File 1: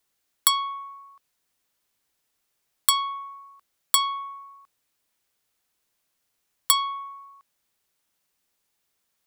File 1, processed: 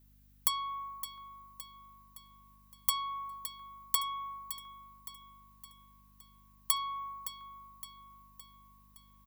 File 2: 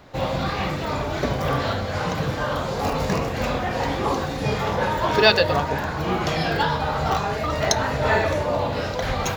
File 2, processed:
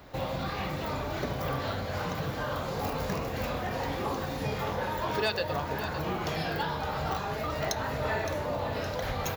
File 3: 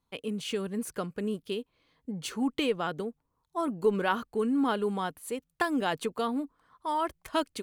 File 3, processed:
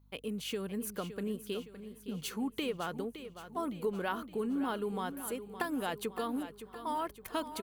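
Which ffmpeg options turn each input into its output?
-af "acompressor=threshold=-31dB:ratio=2,aexciter=amount=2.5:drive=6.6:freq=11k,asoftclip=type=hard:threshold=-16dB,aeval=exprs='val(0)+0.00112*(sin(2*PI*50*n/s)+sin(2*PI*2*50*n/s)/2+sin(2*PI*3*50*n/s)/3+sin(2*PI*4*50*n/s)/4+sin(2*PI*5*50*n/s)/5)':c=same,aecho=1:1:565|1130|1695|2260|2825:0.266|0.136|0.0692|0.0353|0.018,volume=-3dB"

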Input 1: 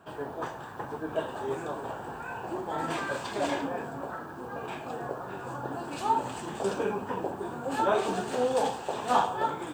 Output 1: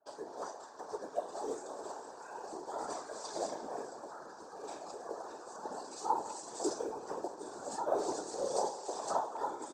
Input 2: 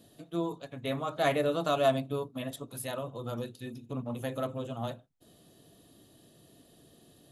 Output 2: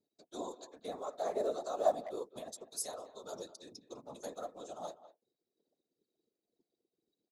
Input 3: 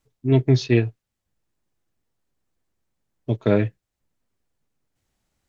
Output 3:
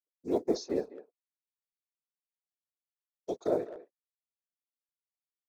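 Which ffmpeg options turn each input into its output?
-filter_complex "[0:a]lowpass=f=6k:w=0.5412,lowpass=f=6k:w=1.3066,aemphasis=mode=production:type=cd,anlmdn=0.00631,highpass=f=310:w=0.5412,highpass=f=310:w=1.3066,equalizer=f=600:w=0.53:g=6.5,aecho=1:1:4.7:0.39,acrossover=split=1300[a][b];[b]acompressor=threshold=-49dB:ratio=12[c];[a][c]amix=inputs=2:normalize=0,tremolo=f=2.1:d=0.4,afftfilt=real='hypot(re,im)*cos(2*PI*random(0))':imag='hypot(re,im)*sin(2*PI*random(1))':win_size=512:overlap=0.75,aexciter=amount=14.7:drive=8.2:freq=4.6k,asplit=2[d][e];[e]adelay=200,highpass=300,lowpass=3.4k,asoftclip=type=hard:threshold=-18dB,volume=-15dB[f];[d][f]amix=inputs=2:normalize=0,volume=-5dB"

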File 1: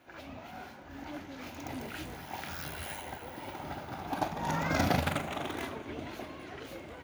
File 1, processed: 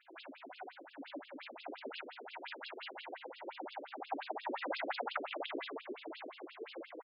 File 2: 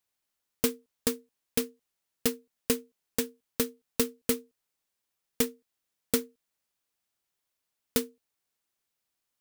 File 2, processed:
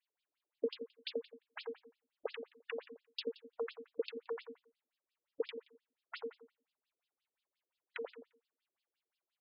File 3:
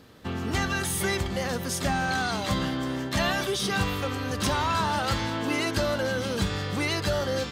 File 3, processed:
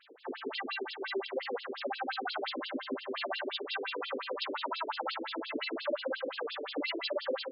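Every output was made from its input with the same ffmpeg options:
-filter_complex "[0:a]bandreject=f=50:t=h:w=6,bandreject=f=100:t=h:w=6,bandreject=f=150:t=h:w=6,bandreject=f=200:t=h:w=6,bandreject=f=250:t=h:w=6,bandreject=f=300:t=h:w=6,acompressor=threshold=-27dB:ratio=6,asplit=2[a][b];[b]adelay=87,lowpass=f=4.9k:p=1,volume=-5dB,asplit=2[c][d];[d]adelay=87,lowpass=f=4.9k:p=1,volume=0.32,asplit=2[e][f];[f]adelay=87,lowpass=f=4.9k:p=1,volume=0.32,asplit=2[g][h];[h]adelay=87,lowpass=f=4.9k:p=1,volume=0.32[i];[c][e][g][i]amix=inputs=4:normalize=0[j];[a][j]amix=inputs=2:normalize=0,afftfilt=real='re*between(b*sr/1024,350*pow(3800/350,0.5+0.5*sin(2*PI*5.7*pts/sr))/1.41,350*pow(3800/350,0.5+0.5*sin(2*PI*5.7*pts/sr))*1.41)':imag='im*between(b*sr/1024,350*pow(3800/350,0.5+0.5*sin(2*PI*5.7*pts/sr))/1.41,350*pow(3800/350,0.5+0.5*sin(2*PI*5.7*pts/sr))*1.41)':win_size=1024:overlap=0.75,volume=2dB"

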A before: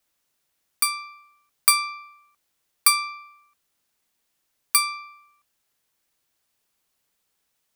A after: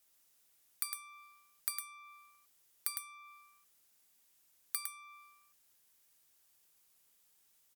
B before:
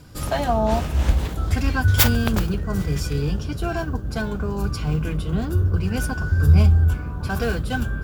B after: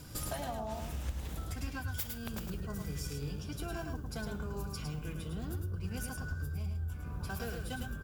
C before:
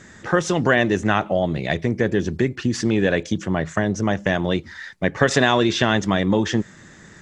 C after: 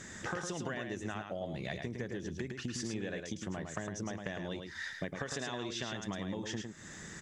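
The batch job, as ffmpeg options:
-filter_complex "[0:a]aemphasis=mode=production:type=cd,bandreject=f=4.3k:w=30,acompressor=threshold=-32dB:ratio=12,asplit=2[a][b];[b]aecho=0:1:107:0.531[c];[a][c]amix=inputs=2:normalize=0,volume=-4dB"

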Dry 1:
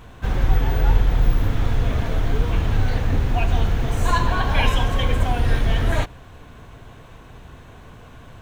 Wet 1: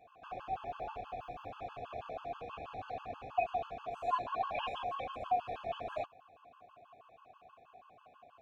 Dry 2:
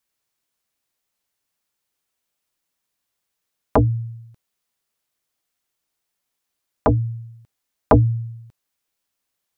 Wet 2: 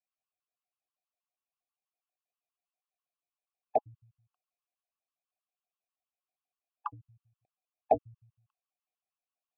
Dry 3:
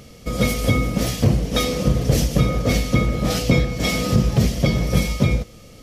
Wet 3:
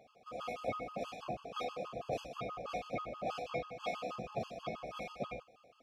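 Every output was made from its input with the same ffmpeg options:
-filter_complex "[0:a]asplit=3[a][b][c];[a]bandpass=f=730:t=q:w=8,volume=0dB[d];[b]bandpass=f=1.09k:t=q:w=8,volume=-6dB[e];[c]bandpass=f=2.44k:t=q:w=8,volume=-9dB[f];[d][e][f]amix=inputs=3:normalize=0,afftfilt=real='re*gt(sin(2*PI*6.2*pts/sr)*(1-2*mod(floor(b*sr/1024/860),2)),0)':imag='im*gt(sin(2*PI*6.2*pts/sr)*(1-2*mod(floor(b*sr/1024/860),2)),0)':win_size=1024:overlap=0.75"

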